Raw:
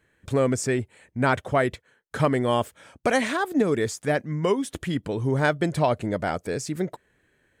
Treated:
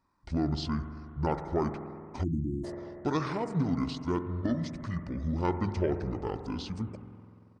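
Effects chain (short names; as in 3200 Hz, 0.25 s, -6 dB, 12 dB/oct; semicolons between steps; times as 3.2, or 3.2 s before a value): spring tank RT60 2.4 s, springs 47 ms, chirp 70 ms, DRR 7 dB; pitch shift -9 st; spectral delete 2.24–2.64, 360–6400 Hz; gain -7.5 dB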